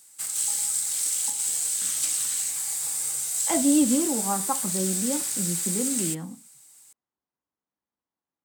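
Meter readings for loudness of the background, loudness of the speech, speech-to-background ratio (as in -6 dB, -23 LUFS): -24.5 LUFS, -27.5 LUFS, -3.0 dB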